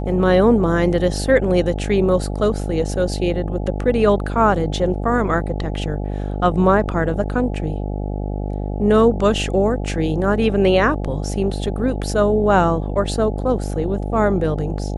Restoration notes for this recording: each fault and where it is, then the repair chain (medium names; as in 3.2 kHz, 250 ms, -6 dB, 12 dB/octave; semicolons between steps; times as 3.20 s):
buzz 50 Hz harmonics 17 -24 dBFS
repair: de-hum 50 Hz, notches 17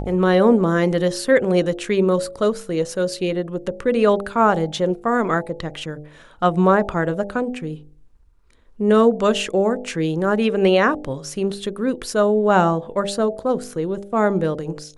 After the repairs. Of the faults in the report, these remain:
nothing left